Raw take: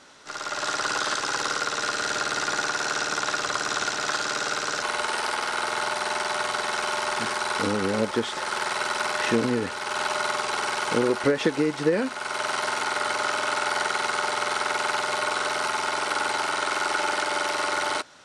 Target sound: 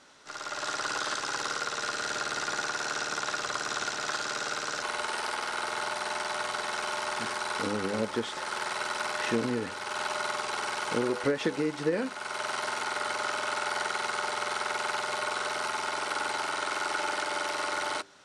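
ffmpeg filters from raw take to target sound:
-af "bandreject=f=98.67:t=h:w=4,bandreject=f=197.34:t=h:w=4,bandreject=f=296.01:t=h:w=4,bandreject=f=394.68:t=h:w=4,bandreject=f=493.35:t=h:w=4,volume=0.531"

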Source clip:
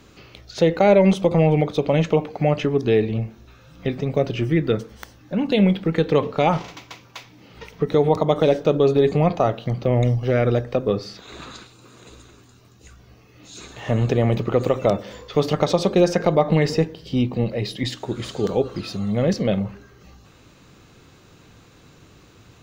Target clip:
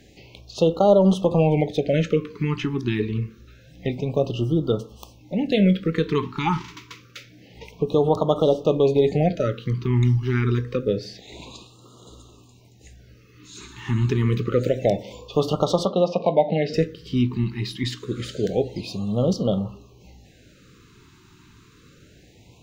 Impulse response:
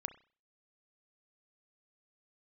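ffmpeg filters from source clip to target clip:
-filter_complex "[0:a]asettb=1/sr,asplit=3[s0][s1][s2];[s0]atrim=end=15.854[s3];[s1]atrim=start=15.85:end=16.74,asetpts=PTS-STARTPTS,afade=t=in:d=0.004:c=qsin,afade=t=out:st=0.886:d=0.004:c=qsin,highpass=190,equalizer=f=360:t=q:w=4:g=-8,equalizer=f=650:t=q:w=4:g=4,equalizer=f=1200:t=q:w=4:g=5,equalizer=f=1800:t=q:w=4:g=-9,lowpass=f=4200:w=0.5412,lowpass=f=4200:w=1.3066[s4];[s2]atrim=start=16.736[s5];[s3][s4]acrossfade=d=0.004:c1=hsin:c2=qsin[s6];[s6][s5]acrossfade=d=0.004:c1=qsin:c2=hsin,asplit=2[s7][s8];[1:a]atrim=start_sample=2205,asetrate=83790,aresample=44100[s9];[s8][s9]afir=irnorm=-1:irlink=0,volume=2.82[s10];[s7][s10]amix=inputs=2:normalize=0,afftfilt=real='re*(1-between(b*sr/1024,580*pow(2000/580,0.5+0.5*sin(2*PI*0.27*pts/sr))/1.41,580*pow(2000/580,0.5+0.5*sin(2*PI*0.27*pts/sr))*1.41))':imag='im*(1-between(b*sr/1024,580*pow(2000/580,0.5+0.5*sin(2*PI*0.27*pts/sr))/1.41,580*pow(2000/580,0.5+0.5*sin(2*PI*0.27*pts/sr))*1.41))':win_size=1024:overlap=0.75,volume=0.398"

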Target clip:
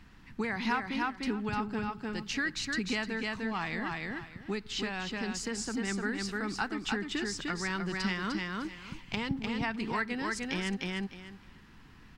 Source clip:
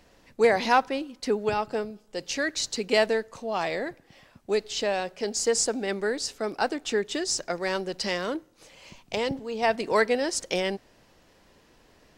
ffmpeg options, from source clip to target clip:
-af "aecho=1:1:301|602|903:0.562|0.101|0.0182,acompressor=threshold=0.0316:ratio=3,firequalizer=gain_entry='entry(200,0);entry(570,-24);entry(830,-9);entry(1300,-3);entry(6000,-14)':delay=0.05:min_phase=1,volume=2.24"

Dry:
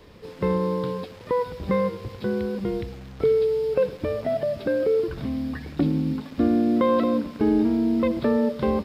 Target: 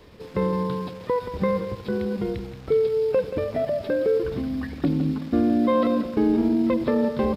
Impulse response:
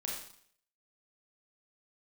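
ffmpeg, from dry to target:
-af "aecho=1:1:207:0.316,atempo=1.2"

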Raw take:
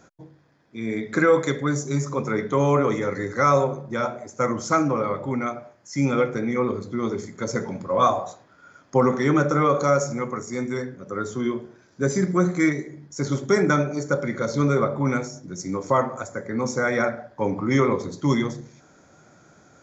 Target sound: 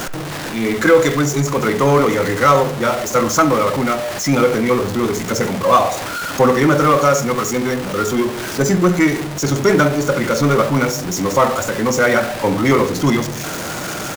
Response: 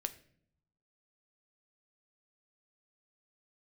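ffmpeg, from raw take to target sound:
-filter_complex "[0:a]aeval=exprs='val(0)+0.5*0.0501*sgn(val(0))':c=same,asplit=2[s0][s1];[s1]adelay=100,highpass=300,lowpass=3400,asoftclip=type=hard:threshold=0.178,volume=0.178[s2];[s0][s2]amix=inputs=2:normalize=0,acontrast=55,asplit=2[s3][s4];[1:a]atrim=start_sample=2205,lowshelf=f=360:g=-7[s5];[s4][s5]afir=irnorm=-1:irlink=0,volume=1.58[s6];[s3][s6]amix=inputs=2:normalize=0,atempo=1.4,volume=0.501"

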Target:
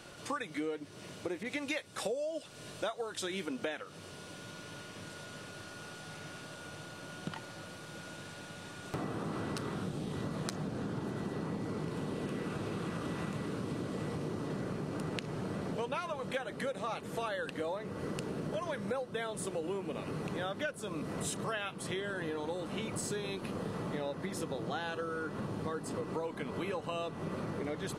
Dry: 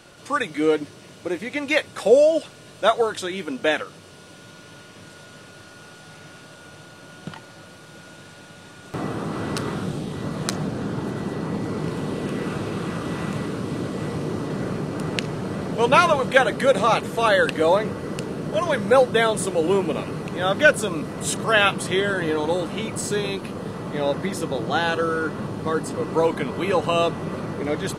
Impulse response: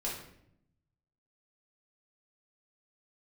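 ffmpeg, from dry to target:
-filter_complex "[0:a]acompressor=threshold=0.0282:ratio=10,asettb=1/sr,asplit=3[s0][s1][s2];[s0]atrim=end=1.434[s3];[s1]atrim=start=1.43:end=3.46,asetpts=PTS-STARTPTS,afade=t=in:d=0.004:c=qsin,afade=t=out:st=2.026:d=0.004:c=qsin,adynamicequalizer=threshold=0.00447:dfrequency=3400:dqfactor=0.7:tfrequency=3400:tqfactor=0.7:attack=5:release=100:ratio=0.375:range=2:mode=boostabove:tftype=highshelf[s4];[s2]atrim=start=3.456[s5];[s3][s4]acrossfade=d=0.004:c1=hsin:c2=qsin[s6];[s6][s5]acrossfade=d=0.004:c1=qsin:c2=hsin,volume=0.708"

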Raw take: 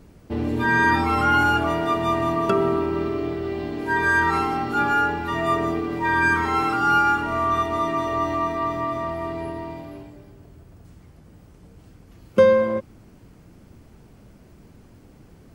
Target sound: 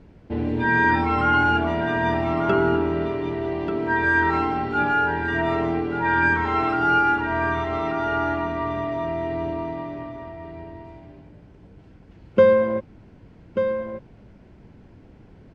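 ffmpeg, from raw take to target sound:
-af "lowpass=3200,bandreject=f=1200:w=8.6,aecho=1:1:1187:0.376"

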